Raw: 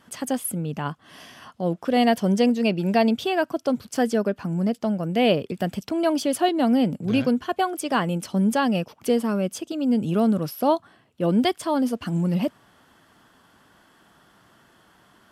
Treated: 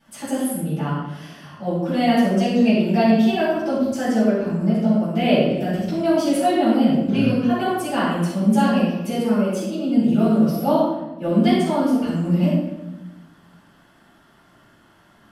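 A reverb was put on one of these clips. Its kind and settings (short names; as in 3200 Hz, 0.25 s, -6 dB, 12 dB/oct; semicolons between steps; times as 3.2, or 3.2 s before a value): shoebox room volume 480 m³, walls mixed, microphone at 8 m; gain -13.5 dB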